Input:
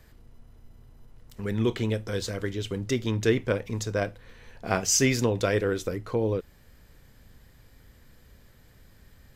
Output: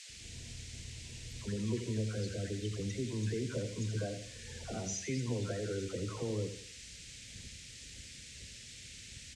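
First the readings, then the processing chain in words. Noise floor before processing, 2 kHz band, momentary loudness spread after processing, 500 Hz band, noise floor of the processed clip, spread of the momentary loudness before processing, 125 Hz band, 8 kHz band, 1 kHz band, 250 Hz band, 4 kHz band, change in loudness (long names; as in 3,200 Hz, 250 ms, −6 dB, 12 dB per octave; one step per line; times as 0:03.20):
−56 dBFS, −14.0 dB, 12 LU, −12.0 dB, −51 dBFS, 10 LU, −6.5 dB, −11.5 dB, −16.0 dB, −9.5 dB, −8.5 dB, −12.5 dB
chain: noise gate −50 dBFS, range −9 dB
high-pass filter 57 Hz
low-shelf EQ 350 Hz +7.5 dB
downward compressor 2 to 1, threshold −46 dBFS, peak gain reduction 17.5 dB
brickwall limiter −29 dBFS, peak gain reduction 8 dB
all-pass dispersion lows, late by 94 ms, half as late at 720 Hz
spectral peaks only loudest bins 32
noise in a band 1,900–8,100 Hz −54 dBFS
on a send: repeating echo 83 ms, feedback 37%, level −9.5 dB
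on the sum: level +2 dB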